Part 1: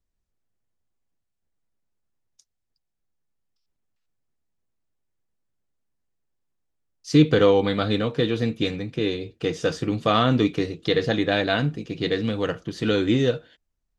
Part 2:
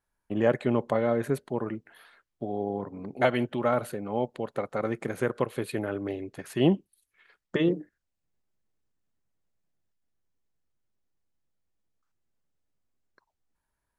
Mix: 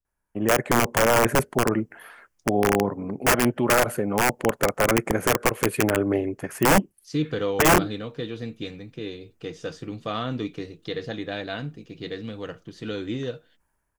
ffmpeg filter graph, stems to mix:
ffmpeg -i stem1.wav -i stem2.wav -filter_complex "[0:a]volume=-9.5dB[link_01];[1:a]dynaudnorm=framelen=210:gausssize=5:maxgain=10.5dB,aeval=exprs='(mod(3.55*val(0)+1,2)-1)/3.55':channel_layout=same,equalizer=frequency=3900:width=2.5:gain=-14,adelay=50,volume=0.5dB[link_02];[link_01][link_02]amix=inputs=2:normalize=0" out.wav

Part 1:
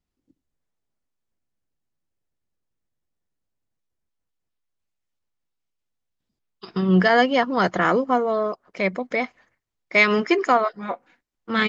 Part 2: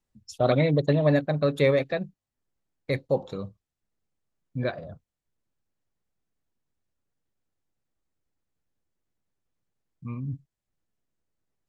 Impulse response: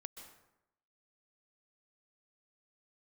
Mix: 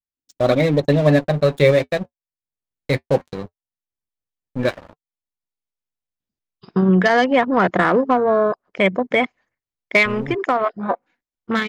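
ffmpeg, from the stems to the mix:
-filter_complex "[0:a]afwtdn=0.0282,acompressor=threshold=-18dB:ratio=16,aeval=exprs='0.316*(cos(1*acos(clip(val(0)/0.316,-1,1)))-cos(1*PI/2))+0.0158*(cos(5*acos(clip(val(0)/0.316,-1,1)))-cos(5*PI/2))+0.0112*(cos(7*acos(clip(val(0)/0.316,-1,1)))-cos(7*PI/2))':channel_layout=same,volume=-5.5dB[link_01];[1:a]aeval=exprs='sgn(val(0))*max(abs(val(0))-0.015,0)':channel_layout=same,flanger=delay=3.2:depth=3.4:regen=-58:speed=0.19:shape=sinusoidal,volume=2dB,asplit=2[link_02][link_03];[link_03]apad=whole_len=515251[link_04];[link_01][link_04]sidechaincompress=threshold=-41dB:ratio=8:attack=6.3:release=676[link_05];[link_05][link_02]amix=inputs=2:normalize=0,dynaudnorm=framelen=230:gausssize=3:maxgain=13dB,equalizer=frequency=1300:width=4.7:gain=-2"

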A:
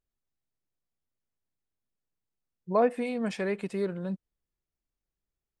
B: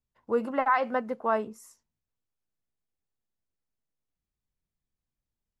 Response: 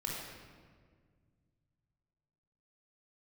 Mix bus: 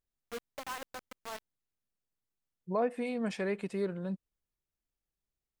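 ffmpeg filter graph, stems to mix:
-filter_complex "[0:a]volume=-3dB[link_01];[1:a]acrusher=bits=3:mix=0:aa=0.000001,volume=-17.5dB[link_02];[link_01][link_02]amix=inputs=2:normalize=0,alimiter=limit=-21.5dB:level=0:latency=1:release=227"

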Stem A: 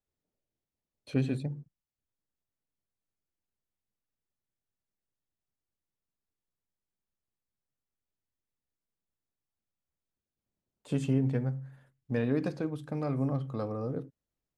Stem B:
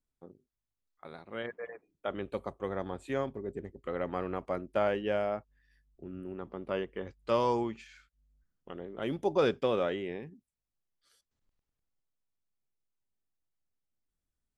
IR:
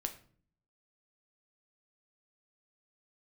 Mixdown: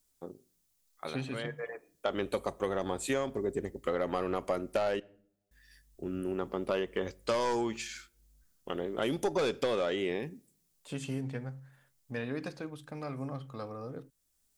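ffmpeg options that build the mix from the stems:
-filter_complex "[0:a]tiltshelf=frequency=830:gain=-6,volume=-3.5dB,asplit=2[link_01][link_02];[1:a]bass=frequency=250:gain=-4,treble=frequency=4000:gain=13,aeval=exprs='0.188*sin(PI/2*2*val(0)/0.188)':channel_layout=same,volume=-3dB,asplit=3[link_03][link_04][link_05];[link_03]atrim=end=5,asetpts=PTS-STARTPTS,afade=type=out:start_time=4.996:duration=0.004:curve=hsin[link_06];[link_04]atrim=start=5:end=5.51,asetpts=PTS-STARTPTS,volume=0[link_07];[link_05]atrim=start=5.51,asetpts=PTS-STARTPTS,afade=type=in:duration=0.004:curve=hsin[link_08];[link_06][link_07][link_08]concat=n=3:v=0:a=1,asplit=2[link_09][link_10];[link_10]volume=-13.5dB[link_11];[link_02]apad=whole_len=642745[link_12];[link_09][link_12]sidechaincompress=threshold=-46dB:ratio=8:attack=32:release=710[link_13];[2:a]atrim=start_sample=2205[link_14];[link_11][link_14]afir=irnorm=-1:irlink=0[link_15];[link_01][link_13][link_15]amix=inputs=3:normalize=0,acompressor=threshold=-27dB:ratio=10"

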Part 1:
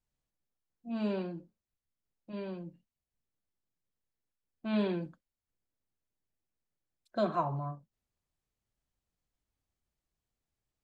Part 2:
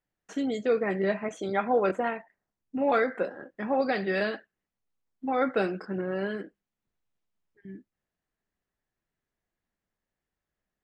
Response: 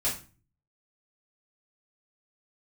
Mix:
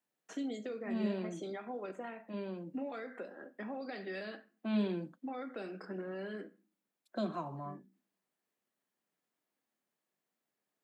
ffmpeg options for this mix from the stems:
-filter_complex "[0:a]equalizer=frequency=5400:width_type=o:width=1.5:gain=-5.5,volume=2.5dB[link_01];[1:a]alimiter=limit=-24dB:level=0:latency=1:release=249,volume=-5.5dB,asplit=2[link_02][link_03];[link_03]volume=-17.5dB[link_04];[2:a]atrim=start_sample=2205[link_05];[link_04][link_05]afir=irnorm=-1:irlink=0[link_06];[link_01][link_02][link_06]amix=inputs=3:normalize=0,highpass=frequency=200:width=0.5412,highpass=frequency=200:width=1.3066,acrossover=split=280|3000[link_07][link_08][link_09];[link_08]acompressor=threshold=-44dB:ratio=2.5[link_10];[link_07][link_10][link_09]amix=inputs=3:normalize=0"

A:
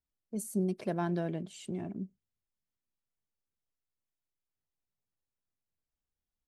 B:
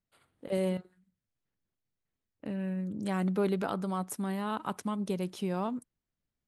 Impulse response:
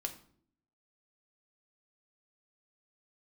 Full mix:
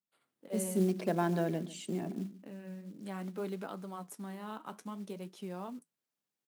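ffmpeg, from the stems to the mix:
-filter_complex "[0:a]bandreject=frequency=50:width_type=h:width=6,bandreject=frequency=100:width_type=h:width=6,bandreject=frequency=150:width_type=h:width=6,bandreject=frequency=200:width_type=h:width=6,bandreject=frequency=250:width_type=h:width=6,bandreject=frequency=300:width_type=h:width=6,bandreject=frequency=350:width_type=h:width=6,adelay=200,volume=2dB,asplit=3[link_01][link_02][link_03];[link_02]volume=-19dB[link_04];[link_03]volume=-17dB[link_05];[1:a]flanger=delay=4.6:depth=9.7:regen=-66:speed=0.55:shape=triangular,volume=-5dB[link_06];[2:a]atrim=start_sample=2205[link_07];[link_04][link_07]afir=irnorm=-1:irlink=0[link_08];[link_05]aecho=0:1:144:1[link_09];[link_01][link_06][link_08][link_09]amix=inputs=4:normalize=0,highpass=frequency=160:width=0.5412,highpass=frequency=160:width=1.3066,acrusher=bits=6:mode=log:mix=0:aa=0.000001"

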